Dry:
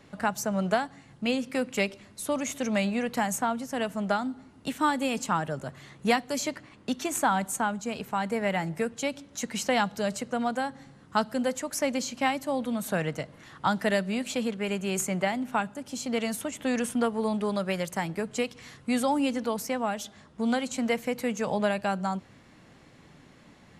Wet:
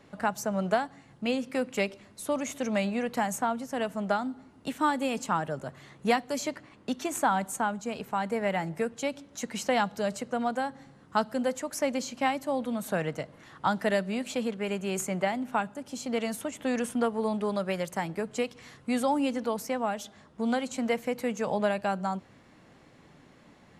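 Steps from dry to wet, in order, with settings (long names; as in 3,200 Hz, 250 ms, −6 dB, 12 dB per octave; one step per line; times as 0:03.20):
parametric band 610 Hz +4 dB 2.9 octaves
level −4 dB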